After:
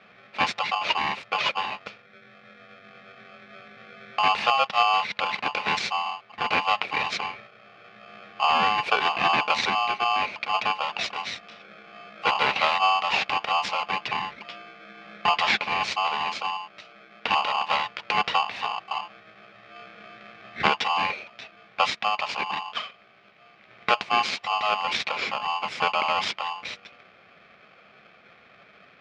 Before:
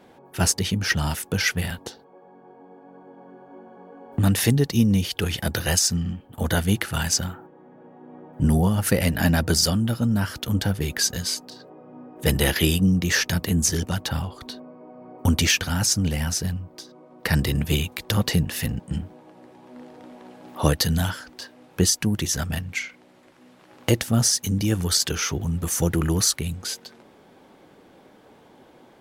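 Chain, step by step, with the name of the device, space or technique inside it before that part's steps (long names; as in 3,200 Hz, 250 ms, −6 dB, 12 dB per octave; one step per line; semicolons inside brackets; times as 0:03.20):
ring modulator pedal into a guitar cabinet (ring modulator with a square carrier 950 Hz; loudspeaker in its box 100–4,100 Hz, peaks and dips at 200 Hz +6 dB, 320 Hz −3 dB, 2,300 Hz +10 dB)
level −3 dB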